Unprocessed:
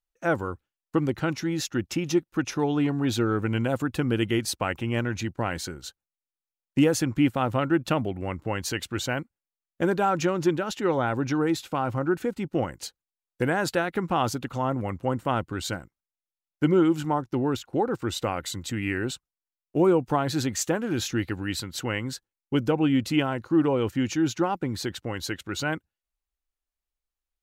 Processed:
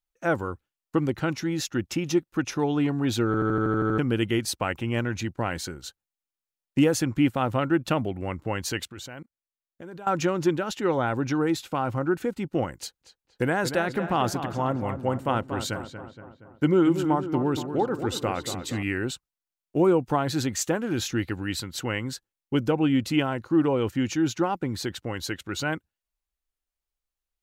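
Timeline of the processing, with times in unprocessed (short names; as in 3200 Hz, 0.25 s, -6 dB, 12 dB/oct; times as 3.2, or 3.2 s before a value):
3.26 stutter in place 0.08 s, 9 plays
8.85–10.07 level quantiser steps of 20 dB
12.78–18.83 darkening echo 0.235 s, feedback 57%, low-pass 2400 Hz, level -9 dB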